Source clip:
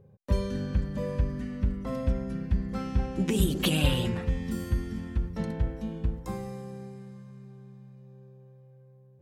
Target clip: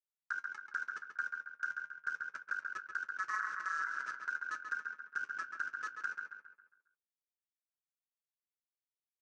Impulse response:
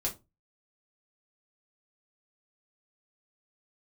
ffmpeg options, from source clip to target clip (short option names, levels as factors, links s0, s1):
-filter_complex "[0:a]bandreject=f=60:t=h:w=6,bandreject=f=120:t=h:w=6,bandreject=f=180:t=h:w=6,bandreject=f=240:t=h:w=6,bandreject=f=300:t=h:w=6,afftfilt=real='re*gte(hypot(re,im),0.316)':imag='im*gte(hypot(re,im),0.316)':win_size=1024:overlap=0.75,equalizer=f=280:t=o:w=1.3:g=-7,acrusher=bits=7:mix=0:aa=0.000001,acompressor=threshold=0.0251:ratio=4,flanger=delay=9.3:depth=3.8:regen=55:speed=0.32:shape=triangular,aeval=exprs='(tanh(63.1*val(0)+0.5)-tanh(0.5))/63.1':c=same,aeval=exprs='val(0)*sin(2*PI*1500*n/s)':c=same,highpass=170,equalizer=f=730:t=q:w=4:g=-9,equalizer=f=1100:t=q:w=4:g=6,equalizer=f=3400:t=q:w=4:g=-7,equalizer=f=5900:t=q:w=4:g=9,lowpass=f=7400:w=0.5412,lowpass=f=7400:w=1.3066,asplit=2[s0][s1];[s1]adelay=136,lowpass=f=3700:p=1,volume=0.531,asplit=2[s2][s3];[s3]adelay=136,lowpass=f=3700:p=1,volume=0.46,asplit=2[s4][s5];[s5]adelay=136,lowpass=f=3700:p=1,volume=0.46,asplit=2[s6][s7];[s7]adelay=136,lowpass=f=3700:p=1,volume=0.46,asplit=2[s8][s9];[s9]adelay=136,lowpass=f=3700:p=1,volume=0.46,asplit=2[s10][s11];[s11]adelay=136,lowpass=f=3700:p=1,volume=0.46[s12];[s0][s2][s4][s6][s8][s10][s12]amix=inputs=7:normalize=0,alimiter=level_in=3.98:limit=0.0631:level=0:latency=1:release=183,volume=0.251,volume=3.16"